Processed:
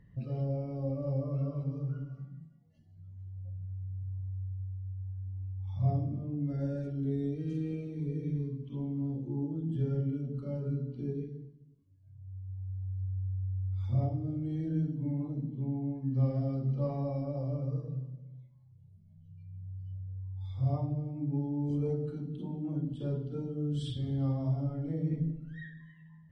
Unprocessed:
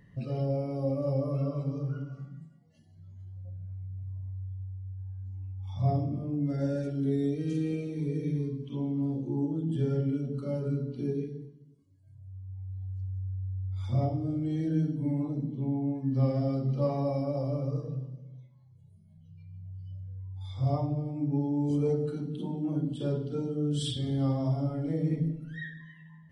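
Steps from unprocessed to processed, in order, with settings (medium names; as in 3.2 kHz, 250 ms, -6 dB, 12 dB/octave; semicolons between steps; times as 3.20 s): low-pass 3.4 kHz 6 dB/octave; bass shelf 120 Hz +12 dB; trim -7 dB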